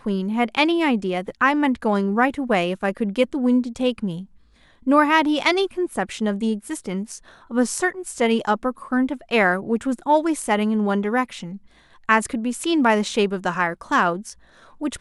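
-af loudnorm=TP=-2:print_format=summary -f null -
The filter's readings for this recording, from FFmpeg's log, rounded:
Input Integrated:    -21.4 LUFS
Input True Peak:      -3.0 dBTP
Input LRA:             1.5 LU
Input Threshold:     -31.9 LUFS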